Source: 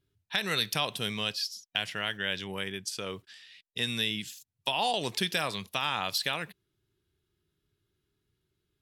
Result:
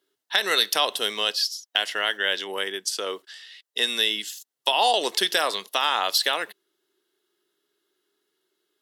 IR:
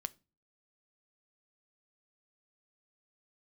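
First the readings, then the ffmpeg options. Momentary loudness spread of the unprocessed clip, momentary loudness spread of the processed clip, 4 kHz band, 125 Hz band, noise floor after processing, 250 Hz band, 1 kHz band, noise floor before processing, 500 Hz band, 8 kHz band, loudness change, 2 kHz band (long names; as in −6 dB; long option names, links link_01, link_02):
11 LU, 11 LU, +8.0 dB, below −15 dB, −84 dBFS, −1.5 dB, +8.5 dB, −82 dBFS, +8.0 dB, +8.5 dB, +7.5 dB, +6.5 dB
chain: -af "highpass=frequency=340:width=0.5412,highpass=frequency=340:width=1.3066,bandreject=frequency=2400:width=6.1,volume=8.5dB"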